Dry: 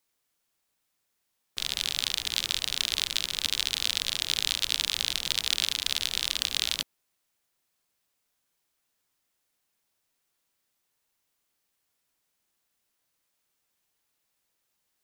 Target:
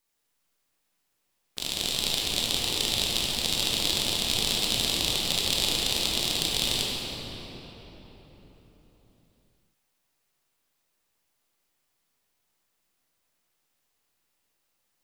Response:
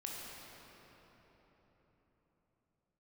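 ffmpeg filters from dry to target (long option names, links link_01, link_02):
-filter_complex "[0:a]aeval=exprs='if(lt(val(0),0),0.447*val(0),val(0))':channel_layout=same[link_01];[1:a]atrim=start_sample=2205[link_02];[link_01][link_02]afir=irnorm=-1:irlink=0,volume=6dB"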